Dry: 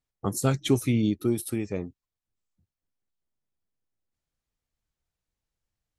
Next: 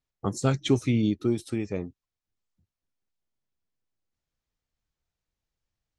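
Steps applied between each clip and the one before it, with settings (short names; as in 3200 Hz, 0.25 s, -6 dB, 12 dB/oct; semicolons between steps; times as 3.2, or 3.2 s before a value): LPF 7300 Hz 24 dB/oct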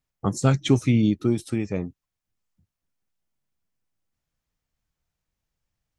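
fifteen-band EQ 160 Hz +3 dB, 400 Hz -3 dB, 4000 Hz -3 dB; gain +4 dB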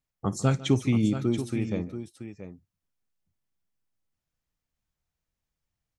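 tapped delay 55/149/681 ms -19.5/-19/-10.5 dB; gain -4 dB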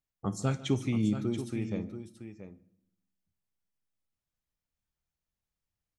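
reverb RT60 0.75 s, pre-delay 5 ms, DRR 14 dB; gain -5.5 dB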